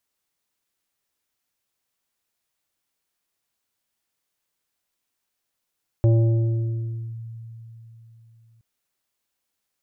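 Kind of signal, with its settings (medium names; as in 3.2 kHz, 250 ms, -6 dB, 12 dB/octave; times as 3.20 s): FM tone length 2.57 s, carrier 114 Hz, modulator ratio 2, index 1.3, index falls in 1.12 s linear, decay 3.84 s, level -14 dB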